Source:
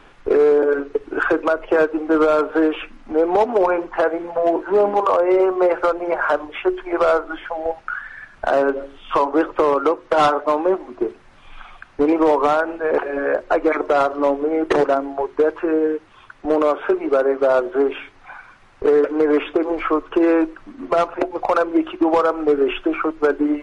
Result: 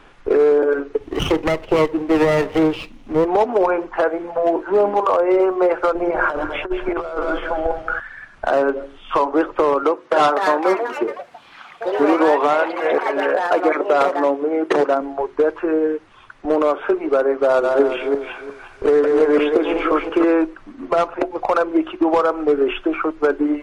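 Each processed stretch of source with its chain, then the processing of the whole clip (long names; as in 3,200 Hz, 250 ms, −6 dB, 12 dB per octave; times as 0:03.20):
0:00.99–0:03.25: lower of the sound and its delayed copy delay 0.32 ms + parametric band 93 Hz +6 dB 2.4 octaves
0:05.95–0:08.00: feedback delay that plays each chunk backwards 104 ms, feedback 67%, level −13 dB + low-shelf EQ 210 Hz +10.5 dB + compressor whose output falls as the input rises −19 dBFS, ratio −0.5
0:09.83–0:15.01: high-pass filter 160 Hz + delay with pitch and tempo change per echo 308 ms, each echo +4 semitones, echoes 3, each echo −6 dB
0:17.44–0:20.24: feedback delay that plays each chunk backwards 177 ms, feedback 45%, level −3 dB + high-shelf EQ 4,700 Hz +6.5 dB
whole clip: no processing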